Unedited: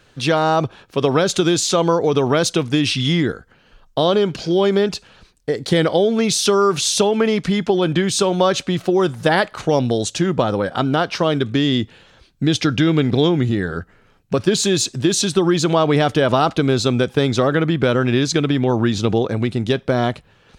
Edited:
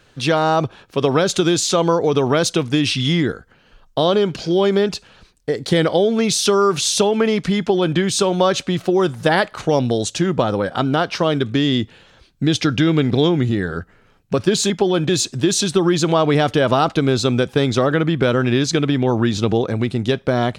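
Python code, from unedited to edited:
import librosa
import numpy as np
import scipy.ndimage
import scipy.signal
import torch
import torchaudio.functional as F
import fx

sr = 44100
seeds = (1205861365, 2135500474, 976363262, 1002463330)

y = fx.edit(x, sr, fx.duplicate(start_s=7.58, length_s=0.39, to_s=14.7), tone=tone)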